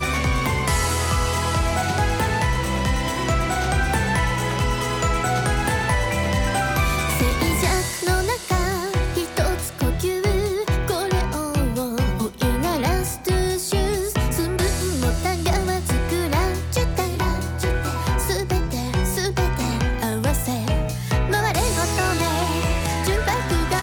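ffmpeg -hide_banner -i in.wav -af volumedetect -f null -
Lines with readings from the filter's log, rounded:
mean_volume: -21.3 dB
max_volume: -10.0 dB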